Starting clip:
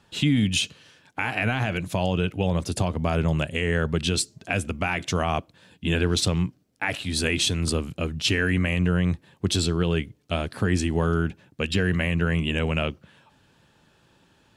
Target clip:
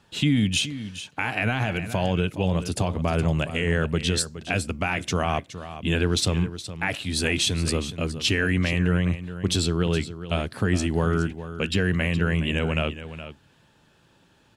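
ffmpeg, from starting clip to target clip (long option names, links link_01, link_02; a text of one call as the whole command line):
ffmpeg -i in.wav -af "aecho=1:1:418:0.237" out.wav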